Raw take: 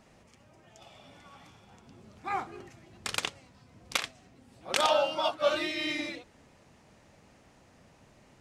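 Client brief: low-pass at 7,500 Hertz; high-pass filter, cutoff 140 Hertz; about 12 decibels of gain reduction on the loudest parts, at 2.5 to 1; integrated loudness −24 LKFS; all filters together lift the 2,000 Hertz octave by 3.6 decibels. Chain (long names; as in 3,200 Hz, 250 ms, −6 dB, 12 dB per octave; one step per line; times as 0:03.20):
high-pass filter 140 Hz
low-pass filter 7,500 Hz
parametric band 2,000 Hz +4.5 dB
downward compressor 2.5 to 1, threshold −39 dBFS
level +16 dB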